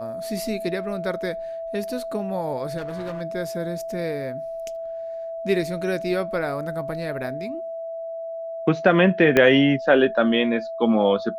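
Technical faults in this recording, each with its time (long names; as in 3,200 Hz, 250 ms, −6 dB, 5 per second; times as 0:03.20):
whistle 660 Hz −29 dBFS
0:02.77–0:03.22: clipping −27 dBFS
0:09.37: click −5 dBFS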